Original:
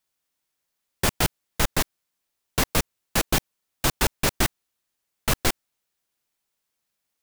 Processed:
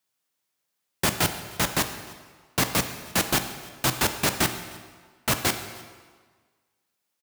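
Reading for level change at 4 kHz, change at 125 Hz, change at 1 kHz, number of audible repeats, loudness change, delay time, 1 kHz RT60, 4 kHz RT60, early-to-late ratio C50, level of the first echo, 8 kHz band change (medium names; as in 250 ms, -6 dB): +0.5 dB, -2.0 dB, +0.5 dB, 1, 0.0 dB, 306 ms, 1.6 s, 1.3 s, 9.0 dB, -24.0 dB, +0.5 dB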